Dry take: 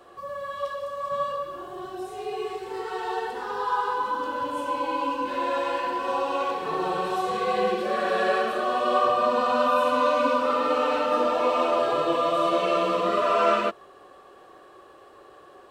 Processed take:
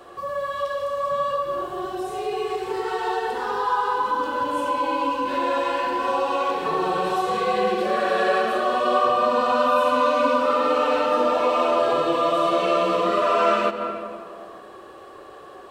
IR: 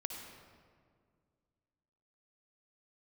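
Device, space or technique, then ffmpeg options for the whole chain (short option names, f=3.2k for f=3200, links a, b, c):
ducked reverb: -filter_complex "[0:a]asplit=3[a][b][c];[1:a]atrim=start_sample=2205[d];[b][d]afir=irnorm=-1:irlink=0[e];[c]apad=whole_len=692772[f];[e][f]sidechaincompress=threshold=-29dB:ratio=8:attack=6.5:release=222,volume=3dB[g];[a][g]amix=inputs=2:normalize=0"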